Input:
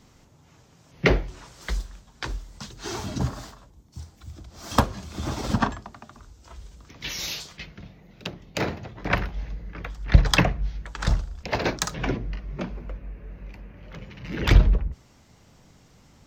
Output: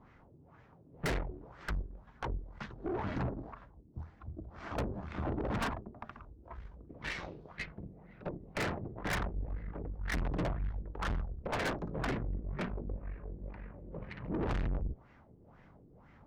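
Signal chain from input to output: LFO low-pass sine 2 Hz 340–2000 Hz; valve stage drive 31 dB, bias 0.8

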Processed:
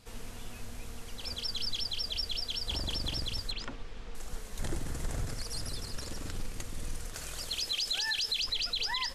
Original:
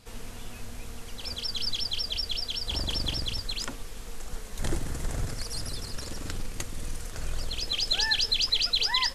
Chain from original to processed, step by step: 3.51–4.15 s: low-pass 3.7 kHz 12 dB/octave; 7.14–8.42 s: tilt EQ +2 dB/octave; peak limiter -21 dBFS, peak gain reduction 10.5 dB; trim -3 dB

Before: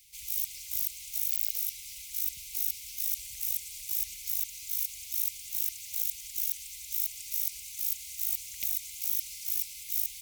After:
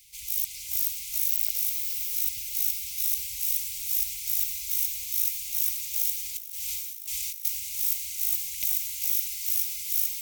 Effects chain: on a send: echo that smears into a reverb 476 ms, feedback 51%, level -4 dB; 6.37–7.45 s: on the sum: compressor with a negative ratio -40 dBFS, ratio -1; trim +3.5 dB

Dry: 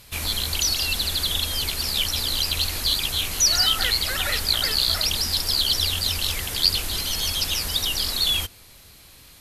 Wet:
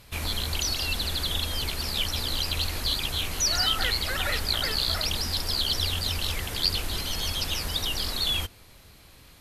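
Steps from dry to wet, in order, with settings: treble shelf 3 kHz -8.5 dB

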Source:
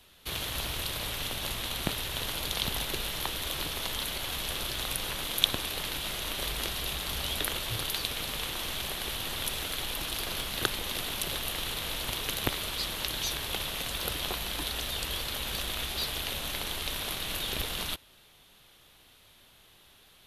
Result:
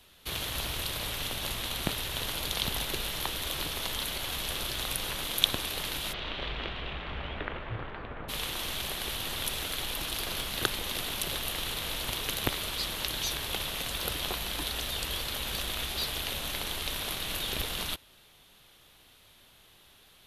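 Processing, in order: 6.12–8.28 s: low-pass 3.9 kHz -> 1.6 kHz 24 dB/octave

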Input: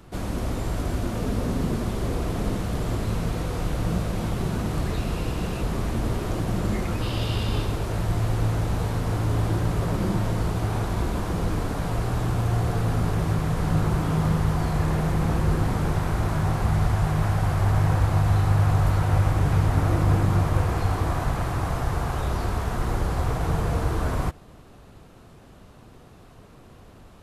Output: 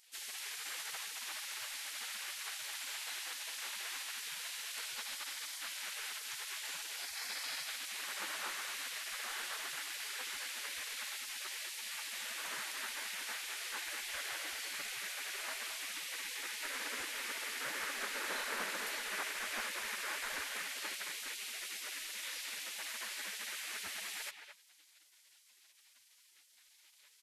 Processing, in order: spectral gate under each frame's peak -30 dB weak; speakerphone echo 220 ms, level -7 dB; trim +1 dB

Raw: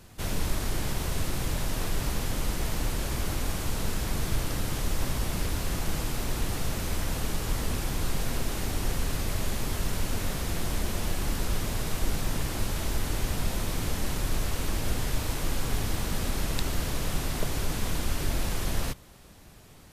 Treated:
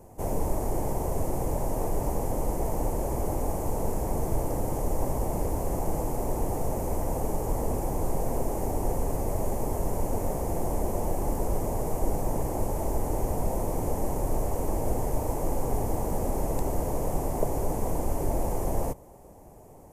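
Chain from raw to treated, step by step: FFT filter 200 Hz 0 dB, 500 Hz +9 dB, 890 Hz +8 dB, 1.4 kHz -13 dB, 2.1 kHz -11 dB, 3.8 kHz -24 dB, 6.7 kHz -5 dB, 12 kHz -2 dB

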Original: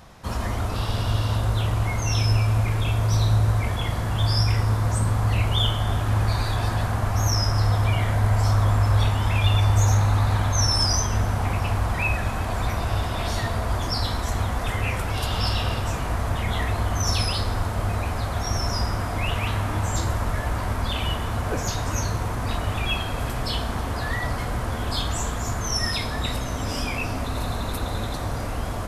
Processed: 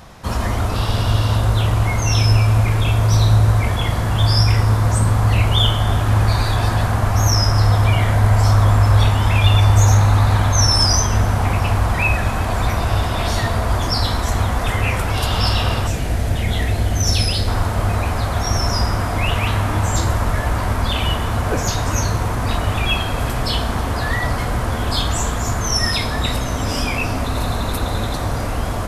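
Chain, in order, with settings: 15.87–17.48 s: peaking EQ 1.1 kHz -13 dB 0.82 oct; trim +6.5 dB

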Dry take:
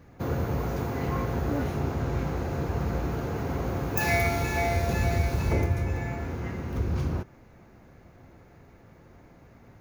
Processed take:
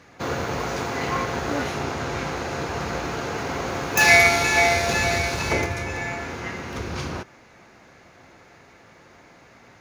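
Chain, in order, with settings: tilt EQ +4 dB/octave; in parallel at -6 dB: crossover distortion -29.5 dBFS; on the sum: distance through air 86 m; trim +8 dB

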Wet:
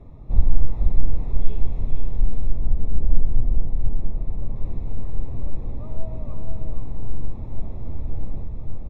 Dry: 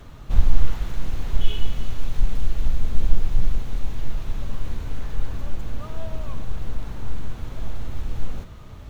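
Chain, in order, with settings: boxcar filter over 29 samples; delay 477 ms -4 dB; 2.51–4.56 s: tape noise reduction on one side only decoder only

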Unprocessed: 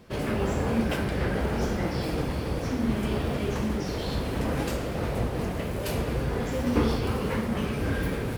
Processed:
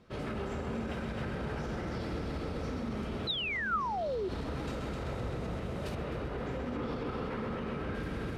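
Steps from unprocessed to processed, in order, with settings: multi-head delay 129 ms, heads first and second, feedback 66%, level -8 dB; 3.27–4.29 s: painted sound fall 350–4100 Hz -17 dBFS; 5.95–7.95 s: tone controls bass -3 dB, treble -9 dB; peak limiter -20 dBFS, peak gain reduction 11 dB; distance through air 55 m; small resonant body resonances 1.3/3.8 kHz, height 8 dB, ringing for 30 ms; trim -8 dB

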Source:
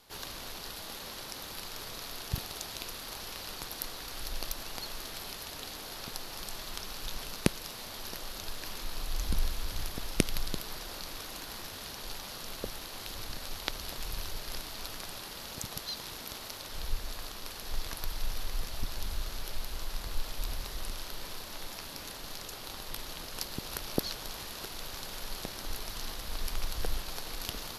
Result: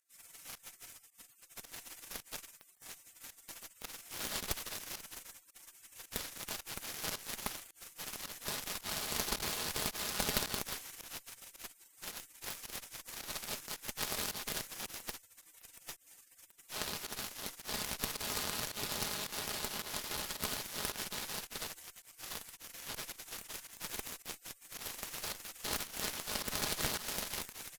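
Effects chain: overload inside the chain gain 21.5 dB; comb 4.8 ms, depth 55%; spectral gate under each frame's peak -25 dB weak; Chebyshev shaper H 8 -7 dB, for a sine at -17.5 dBFS; volume shaper 109 bpm, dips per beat 1, -18 dB, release 109 ms; trim +1 dB

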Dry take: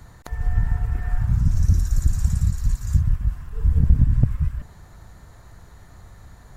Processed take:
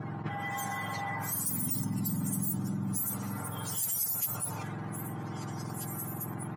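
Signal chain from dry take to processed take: spectrum inverted on a logarithmic axis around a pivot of 1.2 kHz; comb 6.6 ms, depth 48%; level-controlled noise filter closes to 1.1 kHz, open at -23.5 dBFS; repeats whose band climbs or falls 397 ms, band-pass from 210 Hz, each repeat 1.4 oct, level -11 dB; level flattener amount 70%; trim -6.5 dB

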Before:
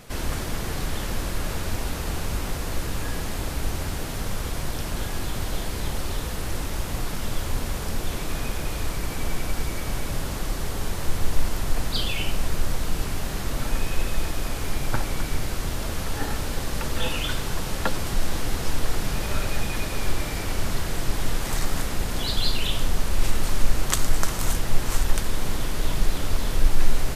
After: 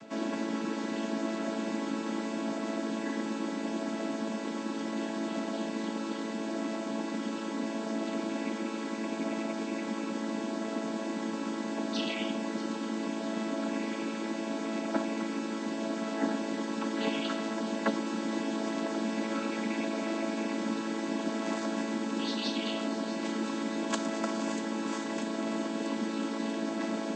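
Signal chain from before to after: vocoder on a held chord major triad, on A3; feedback echo behind a high-pass 640 ms, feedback 70%, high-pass 4.1 kHz, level -10.5 dB

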